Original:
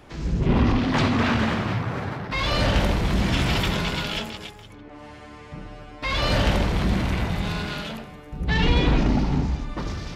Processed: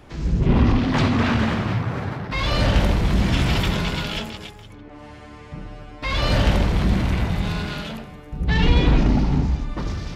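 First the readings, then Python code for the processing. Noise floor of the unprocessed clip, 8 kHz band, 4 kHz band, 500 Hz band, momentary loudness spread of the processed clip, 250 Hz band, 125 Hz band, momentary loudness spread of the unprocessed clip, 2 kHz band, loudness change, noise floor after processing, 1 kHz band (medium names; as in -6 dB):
-43 dBFS, 0.0 dB, 0.0 dB, +0.5 dB, 18 LU, +2.0 dB, +3.5 dB, 19 LU, 0.0 dB, +2.5 dB, -41 dBFS, 0.0 dB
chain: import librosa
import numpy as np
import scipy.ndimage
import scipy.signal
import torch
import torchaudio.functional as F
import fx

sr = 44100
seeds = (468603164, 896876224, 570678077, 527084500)

y = fx.low_shelf(x, sr, hz=210.0, db=4.5)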